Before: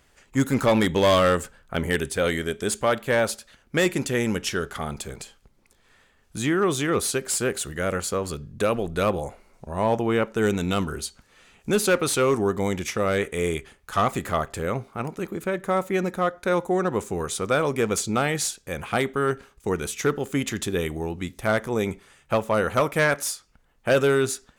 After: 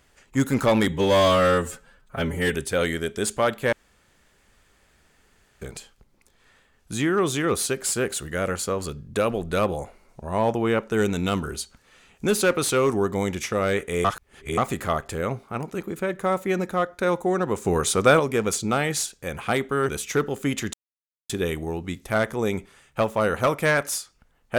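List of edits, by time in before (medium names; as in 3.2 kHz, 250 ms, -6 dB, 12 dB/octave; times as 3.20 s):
0.88–1.99 s: stretch 1.5×
3.17–5.06 s: room tone
13.49–14.02 s: reverse
17.09–17.64 s: gain +6 dB
19.33–19.78 s: delete
20.63 s: insert silence 0.56 s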